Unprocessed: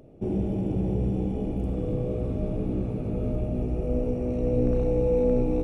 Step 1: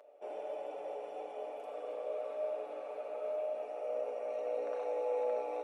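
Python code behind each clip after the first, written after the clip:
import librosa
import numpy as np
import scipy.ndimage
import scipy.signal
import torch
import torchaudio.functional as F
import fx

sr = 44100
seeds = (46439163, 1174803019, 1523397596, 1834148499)

y = scipy.signal.sosfilt(scipy.signal.cheby1(4, 1.0, 560.0, 'highpass', fs=sr, output='sos'), x)
y = fx.high_shelf(y, sr, hz=2900.0, db=-9.5)
y = y + 0.58 * np.pad(y, (int(6.9 * sr / 1000.0), 0))[:len(y)]
y = F.gain(torch.from_numpy(y), 1.0).numpy()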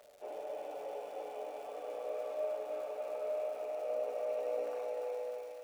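y = fx.fade_out_tail(x, sr, length_s=1.07)
y = fx.dmg_crackle(y, sr, seeds[0], per_s=350.0, level_db=-50.0)
y = fx.echo_thinned(y, sr, ms=301, feedback_pct=71, hz=730.0, wet_db=-4)
y = F.gain(torch.from_numpy(y), -1.0).numpy()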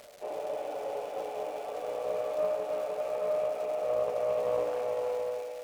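y = fx.dmg_crackle(x, sr, seeds[1], per_s=290.0, level_db=-48.0)
y = fx.doppler_dist(y, sr, depth_ms=0.13)
y = F.gain(torch.from_numpy(y), 7.0).numpy()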